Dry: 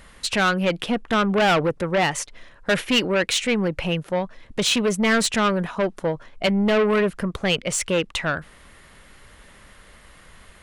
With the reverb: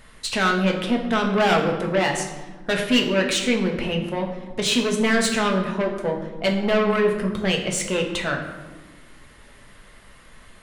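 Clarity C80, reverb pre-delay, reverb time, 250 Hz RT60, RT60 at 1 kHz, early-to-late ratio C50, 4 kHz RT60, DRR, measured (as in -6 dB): 8.5 dB, 5 ms, 1.3 s, 2.1 s, 1.2 s, 6.5 dB, 0.80 s, 1.0 dB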